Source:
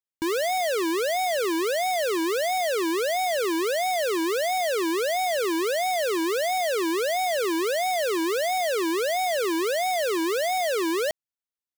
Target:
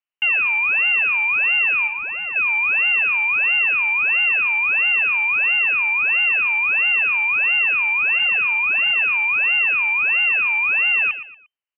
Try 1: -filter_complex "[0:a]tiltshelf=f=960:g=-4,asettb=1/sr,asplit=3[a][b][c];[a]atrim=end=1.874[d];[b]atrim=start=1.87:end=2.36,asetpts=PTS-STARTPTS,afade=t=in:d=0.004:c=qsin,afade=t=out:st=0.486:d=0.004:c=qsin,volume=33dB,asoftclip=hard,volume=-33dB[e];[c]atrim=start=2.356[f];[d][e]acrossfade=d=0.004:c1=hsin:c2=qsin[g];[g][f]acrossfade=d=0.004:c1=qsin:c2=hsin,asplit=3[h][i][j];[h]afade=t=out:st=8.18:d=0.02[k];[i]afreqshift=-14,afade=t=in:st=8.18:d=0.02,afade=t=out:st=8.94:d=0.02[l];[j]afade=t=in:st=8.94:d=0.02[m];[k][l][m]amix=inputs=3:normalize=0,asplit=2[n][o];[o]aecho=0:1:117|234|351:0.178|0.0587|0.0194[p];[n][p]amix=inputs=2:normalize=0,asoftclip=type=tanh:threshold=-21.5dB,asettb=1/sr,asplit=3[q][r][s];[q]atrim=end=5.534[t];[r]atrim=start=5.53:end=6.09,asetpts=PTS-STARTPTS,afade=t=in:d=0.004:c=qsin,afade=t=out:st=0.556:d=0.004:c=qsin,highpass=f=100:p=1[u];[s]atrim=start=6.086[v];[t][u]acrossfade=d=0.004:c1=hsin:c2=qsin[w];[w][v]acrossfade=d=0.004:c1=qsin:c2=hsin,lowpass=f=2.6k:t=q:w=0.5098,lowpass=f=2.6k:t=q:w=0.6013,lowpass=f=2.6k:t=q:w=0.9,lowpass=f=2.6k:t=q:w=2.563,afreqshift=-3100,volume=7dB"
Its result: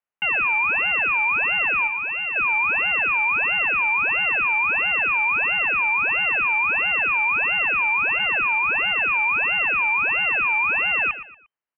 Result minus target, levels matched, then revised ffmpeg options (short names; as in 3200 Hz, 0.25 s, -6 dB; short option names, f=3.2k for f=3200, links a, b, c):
1000 Hz band +8.5 dB
-filter_complex "[0:a]tiltshelf=f=960:g=5,asettb=1/sr,asplit=3[a][b][c];[a]atrim=end=1.874[d];[b]atrim=start=1.87:end=2.36,asetpts=PTS-STARTPTS,afade=t=in:d=0.004:c=qsin,afade=t=out:st=0.486:d=0.004:c=qsin,volume=33dB,asoftclip=hard,volume=-33dB[e];[c]atrim=start=2.356[f];[d][e]acrossfade=d=0.004:c1=hsin:c2=qsin[g];[g][f]acrossfade=d=0.004:c1=qsin:c2=hsin,asplit=3[h][i][j];[h]afade=t=out:st=8.18:d=0.02[k];[i]afreqshift=-14,afade=t=in:st=8.18:d=0.02,afade=t=out:st=8.94:d=0.02[l];[j]afade=t=in:st=8.94:d=0.02[m];[k][l][m]amix=inputs=3:normalize=0,asplit=2[n][o];[o]aecho=0:1:117|234|351:0.178|0.0587|0.0194[p];[n][p]amix=inputs=2:normalize=0,asoftclip=type=tanh:threshold=-21.5dB,asettb=1/sr,asplit=3[q][r][s];[q]atrim=end=5.534[t];[r]atrim=start=5.53:end=6.09,asetpts=PTS-STARTPTS,afade=t=in:d=0.004:c=qsin,afade=t=out:st=0.556:d=0.004:c=qsin,highpass=f=100:p=1[u];[s]atrim=start=6.086[v];[t][u]acrossfade=d=0.004:c1=hsin:c2=qsin[w];[w][v]acrossfade=d=0.004:c1=qsin:c2=hsin,lowpass=f=2.6k:t=q:w=0.5098,lowpass=f=2.6k:t=q:w=0.6013,lowpass=f=2.6k:t=q:w=0.9,lowpass=f=2.6k:t=q:w=2.563,afreqshift=-3100,volume=7dB"